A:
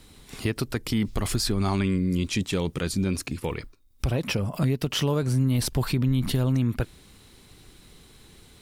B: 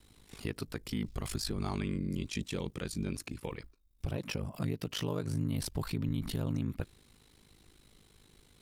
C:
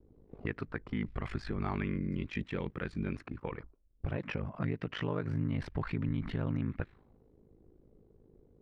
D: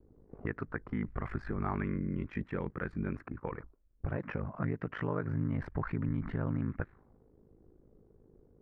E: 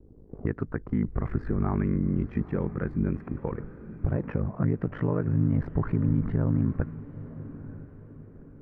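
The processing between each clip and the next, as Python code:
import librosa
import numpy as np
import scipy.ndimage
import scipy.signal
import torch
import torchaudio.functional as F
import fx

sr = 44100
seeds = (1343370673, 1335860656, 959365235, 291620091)

y1 = x * np.sin(2.0 * np.pi * 26.0 * np.arange(len(x)) / sr)
y1 = y1 * librosa.db_to_amplitude(-7.5)
y2 = fx.envelope_lowpass(y1, sr, base_hz=420.0, top_hz=1900.0, q=2.1, full_db=-34.5, direction='up')
y3 = fx.high_shelf_res(y2, sr, hz=2300.0, db=-12.0, q=1.5)
y4 = fx.tilt_shelf(y3, sr, db=7.0, hz=850.0)
y4 = fx.echo_diffused(y4, sr, ms=921, feedback_pct=42, wet_db=-15.0)
y4 = y4 * librosa.db_to_amplitude(2.5)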